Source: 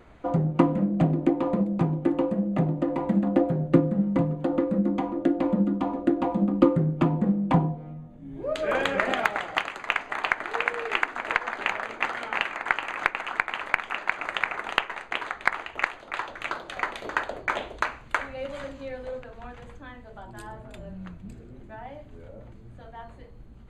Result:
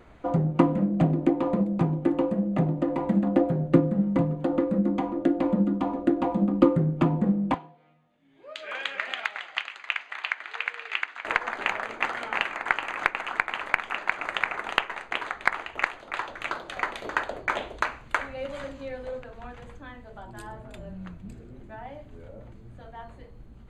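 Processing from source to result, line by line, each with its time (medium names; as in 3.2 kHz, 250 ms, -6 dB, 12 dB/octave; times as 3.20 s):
7.54–11.25 s: band-pass filter 3.1 kHz, Q 1.1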